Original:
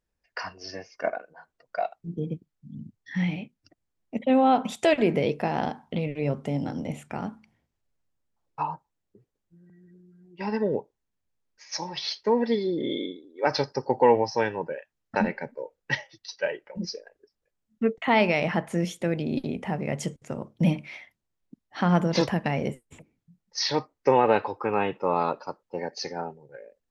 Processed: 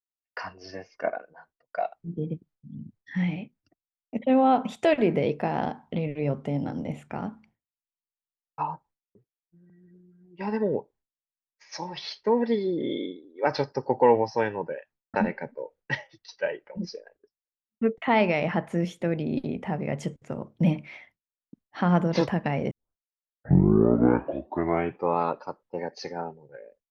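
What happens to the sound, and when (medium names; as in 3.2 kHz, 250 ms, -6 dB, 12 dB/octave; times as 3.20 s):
22.71 s: tape start 2.47 s
whole clip: expander -52 dBFS; treble shelf 4.3 kHz -12 dB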